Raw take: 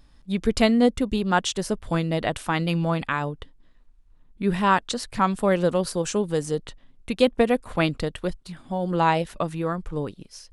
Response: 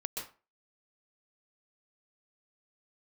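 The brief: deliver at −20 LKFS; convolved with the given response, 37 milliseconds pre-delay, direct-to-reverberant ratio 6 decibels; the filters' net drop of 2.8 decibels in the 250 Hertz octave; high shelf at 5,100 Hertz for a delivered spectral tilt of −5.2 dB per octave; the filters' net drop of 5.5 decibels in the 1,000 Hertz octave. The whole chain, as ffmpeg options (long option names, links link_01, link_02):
-filter_complex "[0:a]equalizer=frequency=250:width_type=o:gain=-3.5,equalizer=frequency=1000:width_type=o:gain=-6.5,highshelf=frequency=5100:gain=-8,asplit=2[link_01][link_02];[1:a]atrim=start_sample=2205,adelay=37[link_03];[link_02][link_03]afir=irnorm=-1:irlink=0,volume=-7.5dB[link_04];[link_01][link_04]amix=inputs=2:normalize=0,volume=6dB"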